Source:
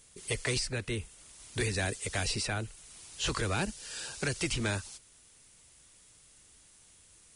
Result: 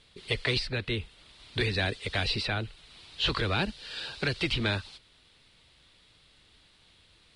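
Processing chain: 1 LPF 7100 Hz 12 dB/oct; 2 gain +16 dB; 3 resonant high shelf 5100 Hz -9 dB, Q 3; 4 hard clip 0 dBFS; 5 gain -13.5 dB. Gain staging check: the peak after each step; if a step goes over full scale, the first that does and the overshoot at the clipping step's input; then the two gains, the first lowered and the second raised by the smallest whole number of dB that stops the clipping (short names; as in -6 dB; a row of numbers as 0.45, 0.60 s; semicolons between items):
-20.5, -4.5, -1.5, -1.5, -15.0 dBFS; no overload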